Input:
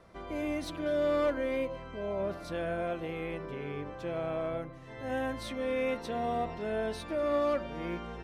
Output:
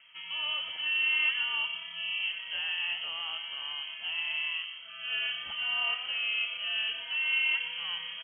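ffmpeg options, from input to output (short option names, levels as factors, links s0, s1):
-filter_complex "[0:a]lowpass=f=2800:t=q:w=0.5098,lowpass=f=2800:t=q:w=0.6013,lowpass=f=2800:t=q:w=0.9,lowpass=f=2800:t=q:w=2.563,afreqshift=-3300,asplit=6[s0][s1][s2][s3][s4][s5];[s1]adelay=120,afreqshift=33,volume=0.316[s6];[s2]adelay=240,afreqshift=66,volume=0.14[s7];[s3]adelay=360,afreqshift=99,volume=0.061[s8];[s4]adelay=480,afreqshift=132,volume=0.0269[s9];[s5]adelay=600,afreqshift=165,volume=0.0119[s10];[s0][s6][s7][s8][s9][s10]amix=inputs=6:normalize=0"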